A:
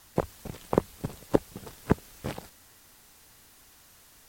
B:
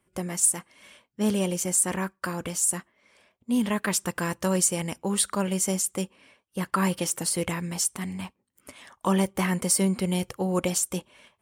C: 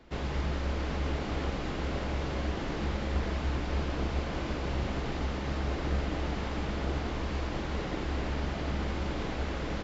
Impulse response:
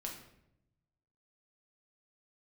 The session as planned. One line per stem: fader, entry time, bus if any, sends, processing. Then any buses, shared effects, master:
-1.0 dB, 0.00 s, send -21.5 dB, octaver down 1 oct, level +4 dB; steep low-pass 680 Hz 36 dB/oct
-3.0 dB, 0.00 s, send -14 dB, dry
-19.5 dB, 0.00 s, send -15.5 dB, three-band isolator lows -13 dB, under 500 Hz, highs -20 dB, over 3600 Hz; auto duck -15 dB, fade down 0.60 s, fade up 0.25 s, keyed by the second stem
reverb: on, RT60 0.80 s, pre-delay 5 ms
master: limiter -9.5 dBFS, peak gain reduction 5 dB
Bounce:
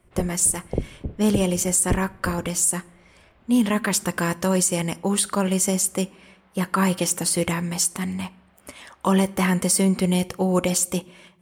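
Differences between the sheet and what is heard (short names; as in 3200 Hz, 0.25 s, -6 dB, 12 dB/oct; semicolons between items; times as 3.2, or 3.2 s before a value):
stem B -3.0 dB -> +4.0 dB; stem C -19.5 dB -> -10.5 dB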